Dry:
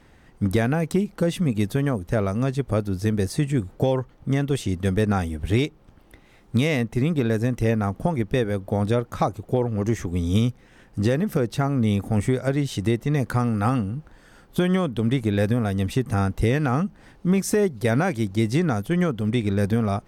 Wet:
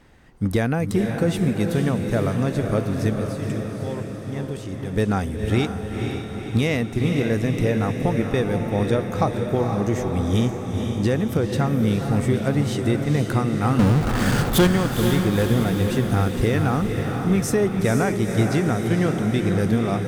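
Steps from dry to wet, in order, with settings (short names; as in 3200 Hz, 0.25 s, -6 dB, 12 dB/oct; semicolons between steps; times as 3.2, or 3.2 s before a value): 3.13–4.95 level quantiser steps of 15 dB; 13.79–14.67 power-law curve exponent 0.35; diffused feedback echo 0.485 s, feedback 63%, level -5 dB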